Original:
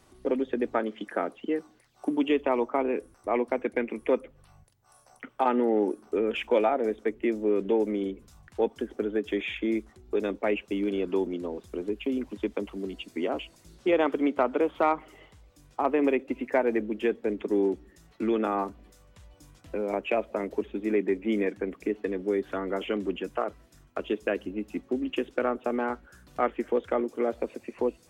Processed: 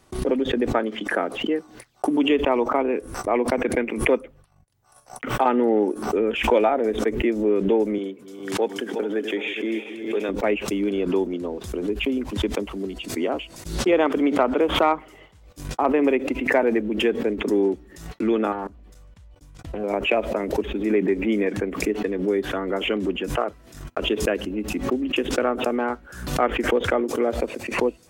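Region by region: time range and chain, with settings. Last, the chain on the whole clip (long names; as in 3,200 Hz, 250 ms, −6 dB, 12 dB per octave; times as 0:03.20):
0:07.98–0:10.29: feedback delay that plays each chunk backwards 207 ms, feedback 68%, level −11 dB + high-pass filter 120 Hz 24 dB per octave + low-shelf EQ 280 Hz −8.5 dB
0:18.52–0:19.84: low-shelf EQ 98 Hz +12 dB + output level in coarse steps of 17 dB + highs frequency-modulated by the lows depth 0.39 ms
whole clip: noise gate −53 dBFS, range −42 dB; background raised ahead of every attack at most 77 dB per second; level +4.5 dB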